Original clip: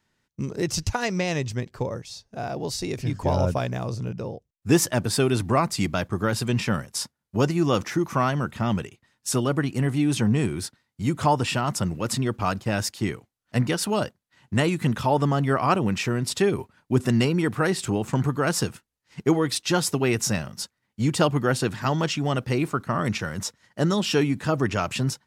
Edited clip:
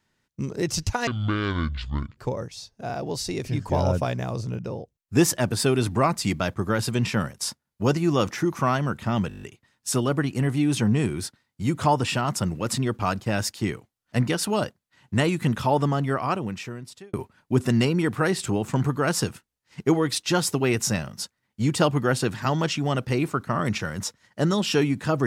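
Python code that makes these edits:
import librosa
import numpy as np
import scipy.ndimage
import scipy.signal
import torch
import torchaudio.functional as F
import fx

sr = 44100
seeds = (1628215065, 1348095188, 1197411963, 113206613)

y = fx.edit(x, sr, fx.speed_span(start_s=1.07, length_s=0.64, speed=0.58),
    fx.stutter(start_s=8.82, slice_s=0.02, count=8),
    fx.fade_out_span(start_s=15.14, length_s=1.39), tone=tone)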